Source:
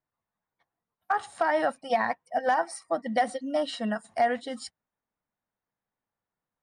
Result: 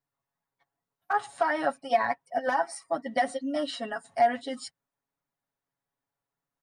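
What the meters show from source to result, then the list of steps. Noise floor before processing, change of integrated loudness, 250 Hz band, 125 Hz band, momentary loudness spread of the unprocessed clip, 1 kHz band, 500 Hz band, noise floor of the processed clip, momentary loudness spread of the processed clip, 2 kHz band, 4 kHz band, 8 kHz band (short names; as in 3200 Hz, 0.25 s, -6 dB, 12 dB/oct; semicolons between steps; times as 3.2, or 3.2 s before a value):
under -85 dBFS, -0.5 dB, -1.5 dB, n/a, 7 LU, 0.0 dB, -1.0 dB, under -85 dBFS, 10 LU, -0.5 dB, -0.5 dB, -0.5 dB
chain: comb 7.2 ms, depth 82%; gain -2.5 dB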